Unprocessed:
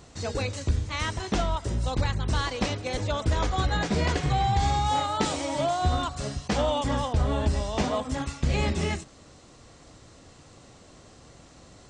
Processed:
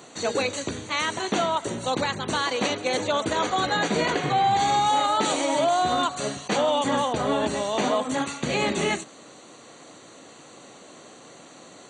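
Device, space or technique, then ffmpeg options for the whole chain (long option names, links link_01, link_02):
PA system with an anti-feedback notch: -filter_complex "[0:a]asettb=1/sr,asplit=3[link_01][link_02][link_03];[link_01]atrim=end=4.104[link_04];[link_02]atrim=start=4.1:end=4.51,asetpts=PTS-STARTPTS,afade=type=in:duration=0.004:curve=qsin,afade=type=out:start_time=0.406:duration=0.004:curve=qsin,highshelf=frequency=6400:gain=-11[link_05];[link_03]atrim=start=4.506[link_06];[link_04][link_05]acrossfade=duration=0.004:curve1=hsin:curve2=qsin[link_07];[link_07][link_06]acrossfade=duration=0.004:curve1=qsin:curve2=hsin,highpass=110,highpass=240,asuperstop=centerf=5200:order=8:qfactor=5.4,alimiter=limit=-21dB:level=0:latency=1:release=41,volume=7dB"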